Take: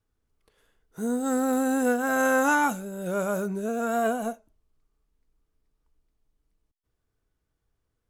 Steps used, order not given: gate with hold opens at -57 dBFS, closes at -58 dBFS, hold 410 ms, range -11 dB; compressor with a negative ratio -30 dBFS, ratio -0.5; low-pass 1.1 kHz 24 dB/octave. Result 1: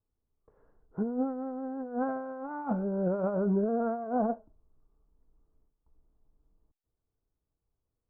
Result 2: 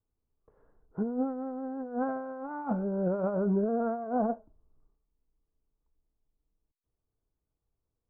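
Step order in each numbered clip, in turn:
low-pass > compressor with a negative ratio > gate with hold; low-pass > gate with hold > compressor with a negative ratio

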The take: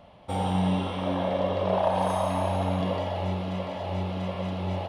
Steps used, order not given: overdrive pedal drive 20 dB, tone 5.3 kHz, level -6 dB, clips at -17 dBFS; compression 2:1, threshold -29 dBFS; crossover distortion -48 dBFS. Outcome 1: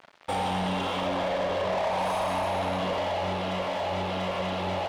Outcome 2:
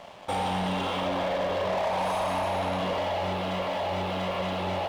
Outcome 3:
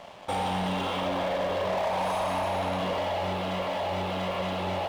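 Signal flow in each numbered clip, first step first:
crossover distortion > overdrive pedal > compression; overdrive pedal > crossover distortion > compression; overdrive pedal > compression > crossover distortion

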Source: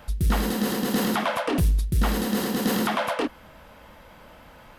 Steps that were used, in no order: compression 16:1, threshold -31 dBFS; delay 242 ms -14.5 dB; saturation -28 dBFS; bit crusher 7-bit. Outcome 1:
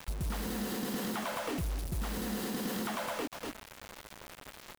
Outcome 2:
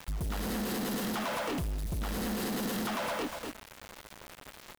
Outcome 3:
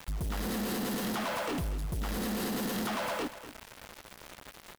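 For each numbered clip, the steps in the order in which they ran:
delay > compression > saturation > bit crusher; delay > saturation > bit crusher > compression; saturation > bit crusher > compression > delay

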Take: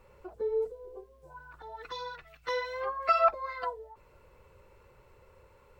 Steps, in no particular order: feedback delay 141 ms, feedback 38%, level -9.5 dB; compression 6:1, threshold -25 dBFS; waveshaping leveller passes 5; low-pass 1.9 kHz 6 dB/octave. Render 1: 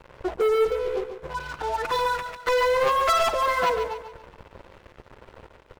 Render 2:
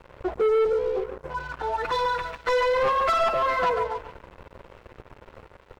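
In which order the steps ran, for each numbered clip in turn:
low-pass > compression > waveshaping leveller > feedback delay; compression > feedback delay > waveshaping leveller > low-pass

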